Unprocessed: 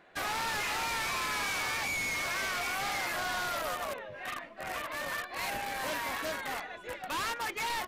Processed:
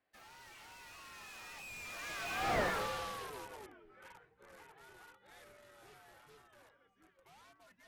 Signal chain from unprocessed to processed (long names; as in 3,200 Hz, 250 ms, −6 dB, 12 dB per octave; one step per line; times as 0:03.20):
source passing by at 0:02.57, 47 m/s, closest 3.3 metres
frequency shifter −120 Hz
slew-rate limiting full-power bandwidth 14 Hz
level +7.5 dB